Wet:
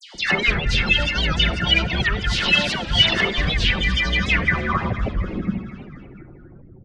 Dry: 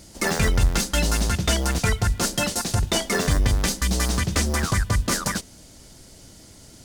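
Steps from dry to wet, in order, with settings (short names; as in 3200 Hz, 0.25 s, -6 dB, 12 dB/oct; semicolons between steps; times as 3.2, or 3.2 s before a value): local time reversal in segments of 0.17 s; spectral gate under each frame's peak -25 dB strong; bell 2400 Hz +10.5 dB 1.4 oct; compressor 2.5:1, threshold -21 dBFS, peak gain reduction 6 dB; low-pass sweep 3400 Hz -> 140 Hz, 4.16–5.6; dispersion lows, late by 0.146 s, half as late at 1700 Hz; on a send: frequency-shifting echo 0.242 s, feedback 65%, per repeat +38 Hz, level -16 dB; on the sum: shoebox room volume 3800 m³, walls furnished, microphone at 1 m; record warp 78 rpm, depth 160 cents; gain +1.5 dB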